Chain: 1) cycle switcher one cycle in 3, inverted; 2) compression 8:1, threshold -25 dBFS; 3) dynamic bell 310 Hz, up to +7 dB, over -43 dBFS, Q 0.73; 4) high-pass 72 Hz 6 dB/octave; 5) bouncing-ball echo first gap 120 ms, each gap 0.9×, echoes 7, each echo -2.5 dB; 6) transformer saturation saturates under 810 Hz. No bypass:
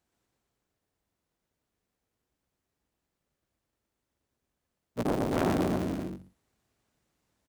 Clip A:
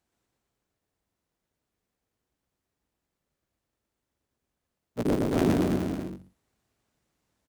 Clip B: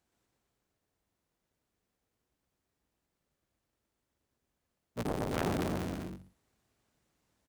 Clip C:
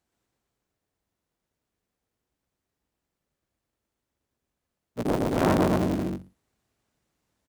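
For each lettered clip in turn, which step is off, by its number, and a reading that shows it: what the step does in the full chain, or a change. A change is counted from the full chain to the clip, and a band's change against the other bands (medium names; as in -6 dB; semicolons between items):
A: 6, crest factor change -3.0 dB; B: 3, loudness change -5.5 LU; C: 2, mean gain reduction 3.5 dB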